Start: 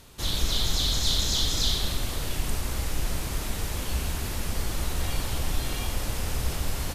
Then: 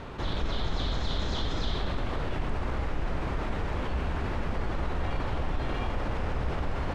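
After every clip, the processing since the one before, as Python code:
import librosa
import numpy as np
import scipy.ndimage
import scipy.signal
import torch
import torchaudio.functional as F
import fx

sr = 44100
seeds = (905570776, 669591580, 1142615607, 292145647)

y = scipy.signal.sosfilt(scipy.signal.butter(2, 1600.0, 'lowpass', fs=sr, output='sos'), x)
y = fx.low_shelf(y, sr, hz=220.0, db=-6.0)
y = fx.env_flatten(y, sr, amount_pct=50)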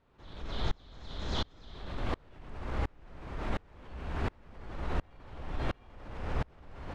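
y = fx.tremolo_decay(x, sr, direction='swelling', hz=1.4, depth_db=33)
y = y * librosa.db_to_amplitude(1.5)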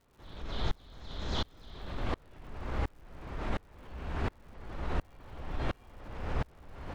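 y = fx.dmg_crackle(x, sr, seeds[0], per_s=230.0, level_db=-56.0)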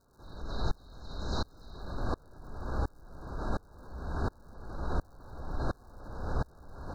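y = fx.brickwall_bandstop(x, sr, low_hz=1700.0, high_hz=3700.0)
y = y * librosa.db_to_amplitude(1.0)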